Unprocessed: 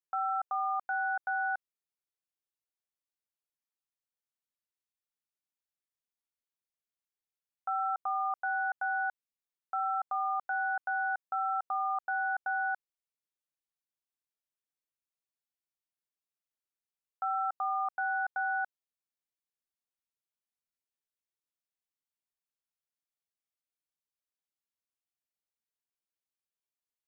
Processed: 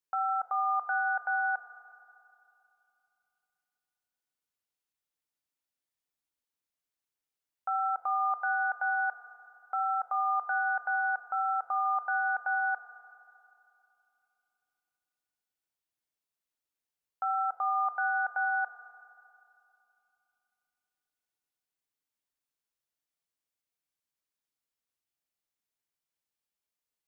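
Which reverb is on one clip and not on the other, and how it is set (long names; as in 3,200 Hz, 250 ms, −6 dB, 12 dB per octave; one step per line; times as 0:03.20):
feedback delay network reverb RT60 2.9 s, high-frequency decay 0.9×, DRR 8 dB
level +2 dB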